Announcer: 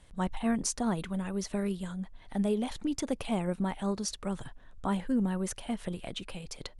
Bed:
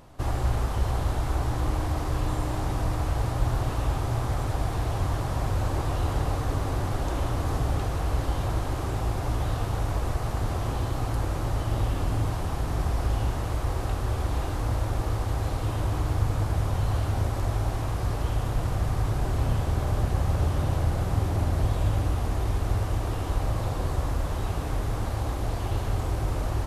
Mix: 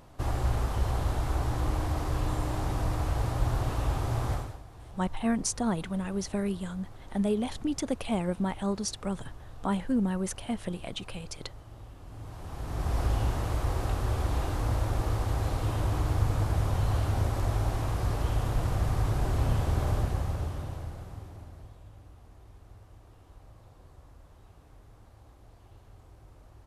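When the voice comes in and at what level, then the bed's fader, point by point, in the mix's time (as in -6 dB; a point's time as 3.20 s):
4.80 s, +1.5 dB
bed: 4.34 s -2.5 dB
4.63 s -21 dB
12.01 s -21 dB
12.97 s -1.5 dB
19.90 s -1.5 dB
21.84 s -26 dB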